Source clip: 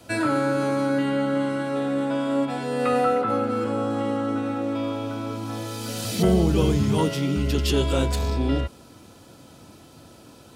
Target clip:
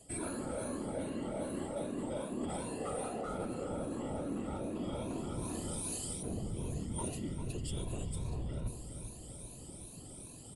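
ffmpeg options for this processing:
ffmpeg -i in.wav -filter_complex "[0:a]afftfilt=real='re*pow(10,12/40*sin(2*PI*(1.5*log(max(b,1)*sr/1024/100)/log(2)-(2.5)*(pts-256)/sr)))':imag='im*pow(10,12/40*sin(2*PI*(1.5*log(max(b,1)*sr/1024/100)/log(2)-(2.5)*(pts-256)/sr)))':win_size=1024:overlap=0.75,acrossover=split=1600[link_01][link_02];[link_01]adynamicsmooth=sensitivity=5:basefreq=1000[link_03];[link_03][link_02]amix=inputs=2:normalize=0,aexciter=amount=5.6:drive=9.5:freq=8300,lowshelf=frequency=100:gain=11.5,bandreject=frequency=50:width_type=h:width=6,bandreject=frequency=100:width_type=h:width=6,bandreject=frequency=150:width_type=h:width=6,bandreject=frequency=200:width_type=h:width=6,bandreject=frequency=250:width_type=h:width=6,bandreject=frequency=300:width_type=h:width=6,bandreject=frequency=350:width_type=h:width=6,bandreject=frequency=400:width_type=h:width=6,bandreject=frequency=450:width_type=h:width=6,bandreject=frequency=500:width_type=h:width=6,aresample=22050,aresample=44100,afftfilt=real='hypot(re,im)*cos(2*PI*random(0))':imag='hypot(re,im)*sin(2*PI*random(1))':win_size=512:overlap=0.75,equalizer=frequency=1500:width_type=o:width=0.57:gain=-6,areverse,acompressor=threshold=-34dB:ratio=12,areverse,asplit=2[link_04][link_05];[link_05]adelay=397,lowpass=frequency=2000:poles=1,volume=-9dB,asplit=2[link_06][link_07];[link_07]adelay=397,lowpass=frequency=2000:poles=1,volume=0.55,asplit=2[link_08][link_09];[link_09]adelay=397,lowpass=frequency=2000:poles=1,volume=0.55,asplit=2[link_10][link_11];[link_11]adelay=397,lowpass=frequency=2000:poles=1,volume=0.55,asplit=2[link_12][link_13];[link_13]adelay=397,lowpass=frequency=2000:poles=1,volume=0.55,asplit=2[link_14][link_15];[link_15]adelay=397,lowpass=frequency=2000:poles=1,volume=0.55[link_16];[link_04][link_06][link_08][link_10][link_12][link_14][link_16]amix=inputs=7:normalize=0,volume=-1.5dB" out.wav

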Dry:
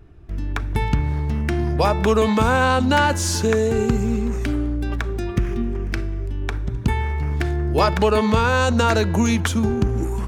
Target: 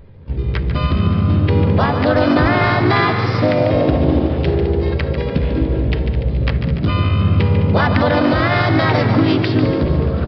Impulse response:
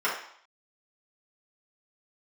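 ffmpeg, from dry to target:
-filter_complex "[0:a]equalizer=frequency=100:width_type=o:width=2.5:gain=3,alimiter=limit=-9.5dB:level=0:latency=1:release=96,asetrate=60591,aresample=44100,atempo=0.727827,asplit=2[link_01][link_02];[link_02]aecho=0:1:210|420|630|840|1050:0.251|0.123|0.0603|0.0296|0.0145[link_03];[link_01][link_03]amix=inputs=2:normalize=0,asplit=3[link_04][link_05][link_06];[link_05]asetrate=37084,aresample=44100,atempo=1.18921,volume=-2dB[link_07];[link_06]asetrate=52444,aresample=44100,atempo=0.840896,volume=-11dB[link_08];[link_04][link_07][link_08]amix=inputs=3:normalize=0,asplit=2[link_09][link_10];[link_10]asplit=7[link_11][link_12][link_13][link_14][link_15][link_16][link_17];[link_11]adelay=145,afreqshift=53,volume=-9dB[link_18];[link_12]adelay=290,afreqshift=106,volume=-13.9dB[link_19];[link_13]adelay=435,afreqshift=159,volume=-18.8dB[link_20];[link_14]adelay=580,afreqshift=212,volume=-23.6dB[link_21];[link_15]adelay=725,afreqshift=265,volume=-28.5dB[link_22];[link_16]adelay=870,afreqshift=318,volume=-33.4dB[link_23];[link_17]adelay=1015,afreqshift=371,volume=-38.3dB[link_24];[link_18][link_19][link_20][link_21][link_22][link_23][link_24]amix=inputs=7:normalize=0[link_25];[link_09][link_25]amix=inputs=2:normalize=0,aresample=11025,aresample=44100,volume=1dB"

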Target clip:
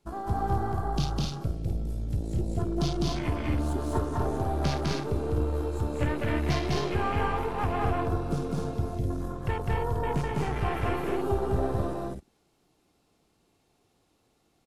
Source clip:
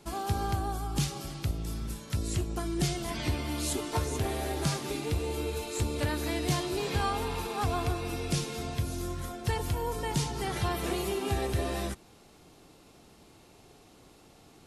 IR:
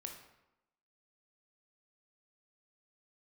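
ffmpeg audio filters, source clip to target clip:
-af "aeval=exprs='0.133*(cos(1*acos(clip(val(0)/0.133,-1,1)))-cos(1*PI/2))+0.0106*(cos(6*acos(clip(val(0)/0.133,-1,1)))-cos(6*PI/2))':channel_layout=same,afwtdn=0.0126,aecho=1:1:204.1|256.6:0.891|0.631"

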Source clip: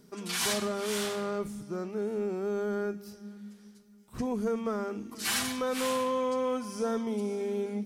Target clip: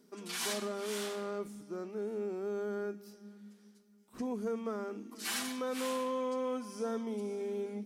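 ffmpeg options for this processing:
ffmpeg -i in.wav -af "lowshelf=frequency=170:width_type=q:width=1.5:gain=-12,volume=-6.5dB" out.wav

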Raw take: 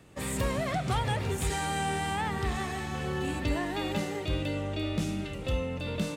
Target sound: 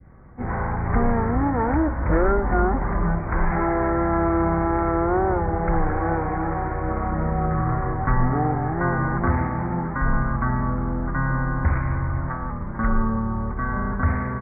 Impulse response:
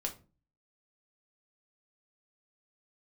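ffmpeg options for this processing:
-af "aresample=11025,aresample=44100,adynamicequalizer=threshold=0.00501:dfrequency=2300:dqfactor=0.73:tfrequency=2300:tqfactor=0.73:attack=5:release=100:ratio=0.375:range=2.5:mode=boostabove:tftype=bell,asetrate=18846,aresample=44100,volume=8.5dB"

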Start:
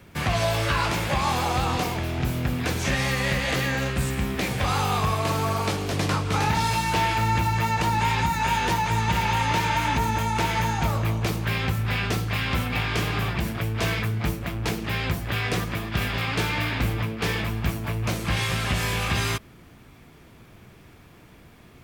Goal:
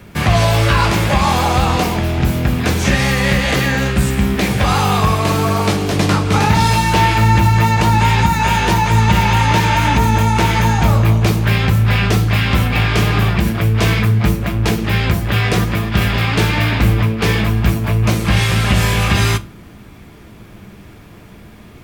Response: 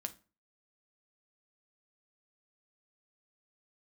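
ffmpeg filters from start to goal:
-filter_complex "[0:a]asplit=2[link_01][link_02];[1:a]atrim=start_sample=2205,lowshelf=frequency=480:gain=4.5[link_03];[link_02][link_03]afir=irnorm=-1:irlink=0,volume=8.5dB[link_04];[link_01][link_04]amix=inputs=2:normalize=0,volume=-1.5dB"

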